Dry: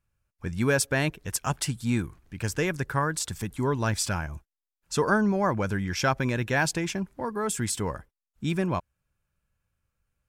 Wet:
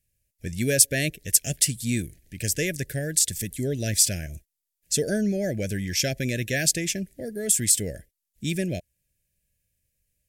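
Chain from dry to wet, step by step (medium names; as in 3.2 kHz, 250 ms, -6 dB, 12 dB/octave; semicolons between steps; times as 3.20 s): elliptic band-stop 630–1800 Hz, stop band 80 dB; peaking EQ 13 kHz +14.5 dB 2 oct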